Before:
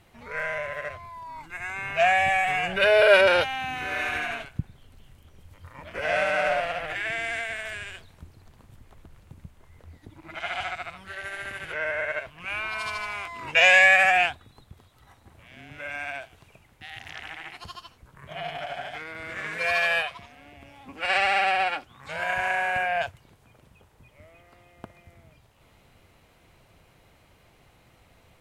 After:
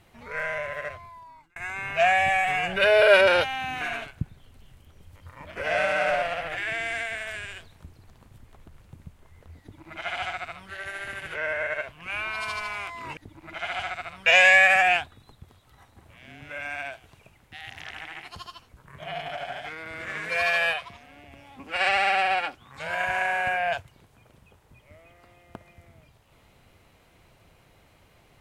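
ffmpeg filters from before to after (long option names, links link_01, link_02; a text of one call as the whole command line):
ffmpeg -i in.wav -filter_complex "[0:a]asplit=5[link_01][link_02][link_03][link_04][link_05];[link_01]atrim=end=1.56,asetpts=PTS-STARTPTS,afade=type=out:start_time=0.87:duration=0.69[link_06];[link_02]atrim=start=1.56:end=3.812,asetpts=PTS-STARTPTS,afade=type=in:duration=0.004:curve=hsin[link_07];[link_03]atrim=start=4.188:end=13.552[link_08];[link_04]atrim=start=9.978:end=11.072[link_09];[link_05]atrim=start=13.548[link_10];[link_06][link_07]concat=n=2:v=0:a=1[link_11];[link_11][link_08]acrossfade=duration=0.004:curve1=hsin:curve2=hsin[link_12];[link_12][link_09]acrossfade=duration=0.004:curve1=hsin:curve2=hsin[link_13];[link_13][link_10]acrossfade=duration=0.004:curve1=hsin:curve2=hsin" out.wav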